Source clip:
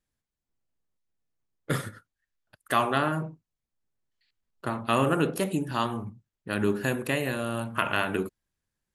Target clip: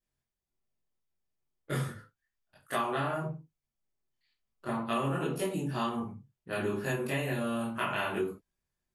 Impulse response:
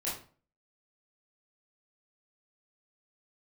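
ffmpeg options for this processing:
-filter_complex "[1:a]atrim=start_sample=2205,atrim=end_sample=6615,asetrate=52920,aresample=44100[s0];[0:a][s0]afir=irnorm=-1:irlink=0,acompressor=threshold=0.0708:ratio=6,volume=0.596"

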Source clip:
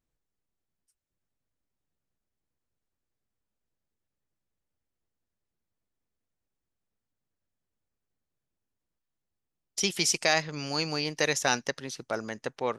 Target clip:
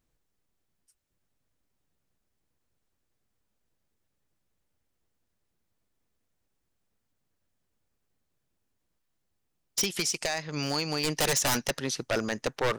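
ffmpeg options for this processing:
-filter_complex "[0:a]asettb=1/sr,asplit=3[s0][s1][s2];[s0]atrim=end=9.814[s3];[s1]atrim=start=9.81:end=11.04,asetpts=PTS-STARTPTS,afade=t=in:d=0.004:c=qsin,afade=t=out:st=1.226:d=0.004:c=qsin,acompressor=threshold=0.0251:ratio=10[s4];[s2]atrim=start=11.036[s5];[s3][s4]acrossfade=d=0.004:c1=hsin:c2=qsin[s6];[s6][s5]acrossfade=d=0.004:c1=qsin:c2=hsin,aeval=exprs='0.0473*(abs(mod(val(0)/0.0473+3,4)-2)-1)':c=same,volume=2.24"

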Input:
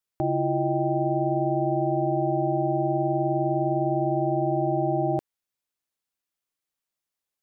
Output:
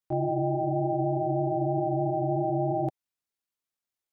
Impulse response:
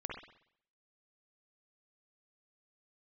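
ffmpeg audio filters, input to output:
-af "flanger=delay=19:depth=3.8:speed=1.8,atempo=1.8"

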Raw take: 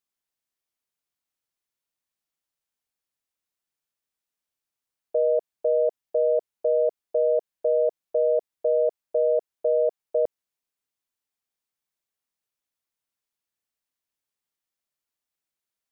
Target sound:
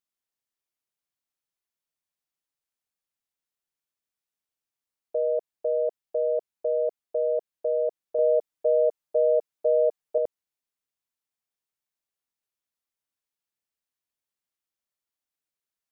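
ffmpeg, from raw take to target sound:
-filter_complex "[0:a]asettb=1/sr,asplit=3[s0][s1][s2];[s0]atrim=end=8.184[s3];[s1]atrim=start=8.18:end=10.18,asetpts=PTS-STARTPTS,afade=t=in:d=0.004:c=qsin,afade=t=out:st=1.996:d=0.004:c=qsin,aecho=1:1:6.7:0.87,atrim=end_sample=88200[s4];[s2]atrim=start=10.176[s5];[s3][s4]acrossfade=d=0.004:c1=hsin:c2=qsin[s6];[s6][s5]acrossfade=d=0.004:c1=qsin:c2=hsin,volume=0.668"

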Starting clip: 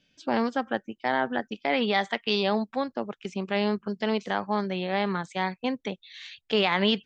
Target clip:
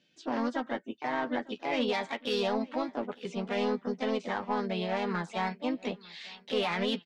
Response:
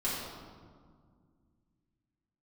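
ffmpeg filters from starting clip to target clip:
-filter_complex "[0:a]highpass=140,lowshelf=f=400:g=12,alimiter=limit=0.224:level=0:latency=1:release=133,asplit=2[s0][s1];[s1]highpass=f=720:p=1,volume=3.16,asoftclip=type=tanh:threshold=0.224[s2];[s0][s2]amix=inputs=2:normalize=0,lowpass=f=5800:p=1,volume=0.501,asplit=2[s3][s4];[s4]asetrate=52444,aresample=44100,atempo=0.840896,volume=0.562[s5];[s3][s5]amix=inputs=2:normalize=0,asplit=2[s6][s7];[s7]adelay=12,volume=0.398[s8];[s6][s8]amix=inputs=2:normalize=0,aecho=1:1:901|1802:0.0668|0.0227,volume=0.355"

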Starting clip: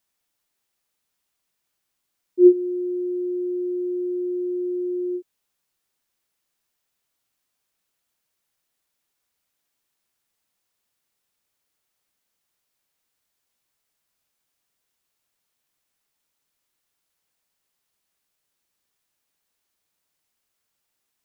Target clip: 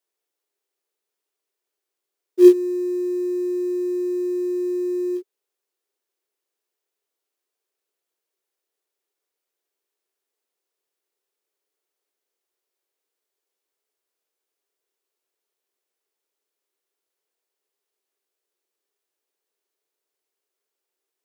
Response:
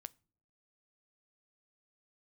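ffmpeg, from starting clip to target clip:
-af "acrusher=bits=4:mode=log:mix=0:aa=0.000001,highpass=f=400:t=q:w=4.9,volume=0.447"

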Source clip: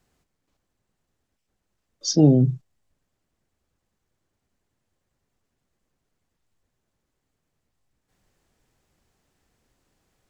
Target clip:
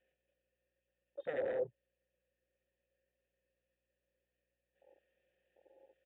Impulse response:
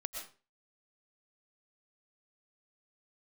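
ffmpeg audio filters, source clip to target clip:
-filter_complex "[0:a]highpass=f=81:p=1,highshelf=f=2300:g=6.5,bandreject=f=2000:w=27,aecho=1:1:5.5:0.5,asplit=2[s0][s1];[s1]aecho=0:1:47|85|206|325:0.141|0.126|0.299|0.158[s2];[s0][s2]amix=inputs=2:normalize=0,acompressor=threshold=0.0891:ratio=8,alimiter=level_in=1.06:limit=0.0631:level=0:latency=1:release=81,volume=0.944,aresample=8000,aeval=exprs='0.0631*sin(PI/2*4.47*val(0)/0.0631)':c=same,aresample=44100,asplit=3[s3][s4][s5];[s3]bandpass=f=530:t=q:w=8,volume=1[s6];[s4]bandpass=f=1840:t=q:w=8,volume=0.501[s7];[s5]bandpass=f=2480:t=q:w=8,volume=0.355[s8];[s6][s7][s8]amix=inputs=3:normalize=0,atempo=1.7,aeval=exprs='val(0)+0.000141*(sin(2*PI*60*n/s)+sin(2*PI*2*60*n/s)/2+sin(2*PI*3*60*n/s)/3+sin(2*PI*4*60*n/s)/4+sin(2*PI*5*60*n/s)/5)':c=same,afwtdn=0.00224,volume=1.19"

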